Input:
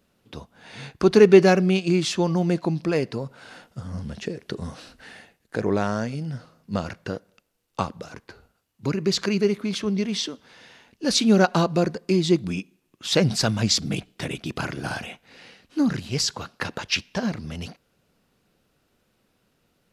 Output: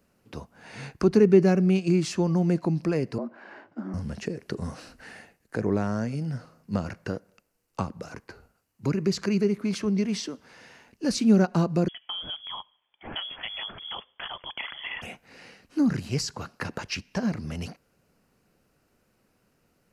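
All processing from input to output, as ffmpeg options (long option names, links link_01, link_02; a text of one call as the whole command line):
ffmpeg -i in.wav -filter_complex "[0:a]asettb=1/sr,asplit=3[link_01][link_02][link_03];[link_01]atrim=end=3.184[link_04];[link_02]atrim=start=3.18:end=3.94,asetpts=PTS-STARTPTS,afade=type=in:duration=0.004:curve=qsin,afade=type=out:start_time=0.756:duration=0.004:curve=qsin,lowpass=2200,afreqshift=100[link_05];[link_03]atrim=start=3.936[link_06];[link_04][link_05]acrossfade=duration=0.004:curve1=hsin:curve2=qsin[link_07];[link_07][link_06]acrossfade=duration=0.004:curve1=qsin:curve2=hsin,asettb=1/sr,asplit=3[link_08][link_09][link_10];[link_08]atrim=end=11.884[link_11];[link_09]atrim=start=11.88:end=15.02,asetpts=PTS-STARTPTS,afade=type=in:duration=0.004:curve=qsin,afade=type=out:start_time=3.136:duration=0.004:curve=qsin,acompressor=threshold=-21dB:ratio=3:attack=3.2:release=140:knee=1:detection=peak,aphaser=in_gain=1:out_gain=1:delay=4.6:decay=0.23:speed=1.1:type=triangular,lowpass=frequency=3000:width_type=q:width=0.5098,lowpass=frequency=3000:width_type=q:width=0.6013,lowpass=frequency=3000:width_type=q:width=0.9,lowpass=frequency=3000:width_type=q:width=2.563,afreqshift=-3500[link_12];[link_10]atrim=start=15.016[link_13];[link_11][link_12]acrossfade=duration=0.004:curve1=hsin:curve2=qsin[link_14];[link_14][link_13]acrossfade=duration=0.004:curve1=qsin:curve2=hsin,equalizer=frequency=3500:width=3.3:gain=-10,acrossover=split=340[link_15][link_16];[link_16]acompressor=threshold=-34dB:ratio=2[link_17];[link_15][link_17]amix=inputs=2:normalize=0" out.wav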